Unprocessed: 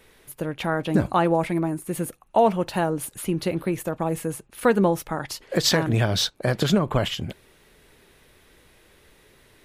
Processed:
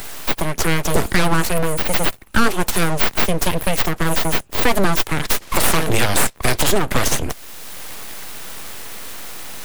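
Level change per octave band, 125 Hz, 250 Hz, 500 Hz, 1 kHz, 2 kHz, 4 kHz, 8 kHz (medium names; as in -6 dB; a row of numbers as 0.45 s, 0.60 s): +2.5 dB, +1.5 dB, +1.0 dB, +4.5 dB, +10.5 dB, +5.0 dB, +11.0 dB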